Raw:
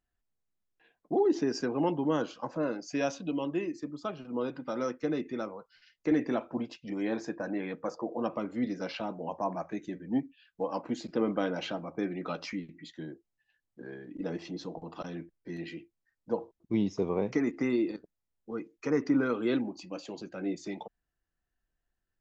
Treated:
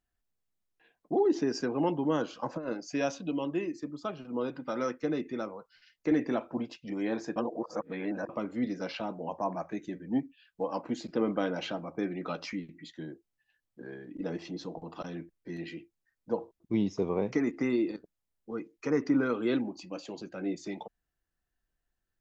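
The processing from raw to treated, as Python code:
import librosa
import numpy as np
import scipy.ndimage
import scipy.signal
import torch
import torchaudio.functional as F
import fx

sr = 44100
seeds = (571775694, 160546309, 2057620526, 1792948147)

y = fx.over_compress(x, sr, threshold_db=-33.0, ratio=-0.5, at=(2.32, 2.72), fade=0.02)
y = fx.dynamic_eq(y, sr, hz=1900.0, q=1.1, threshold_db=-49.0, ratio=4.0, max_db=4, at=(4.56, 5.0))
y = fx.edit(y, sr, fx.reverse_span(start_s=7.36, length_s=0.93), tone=tone)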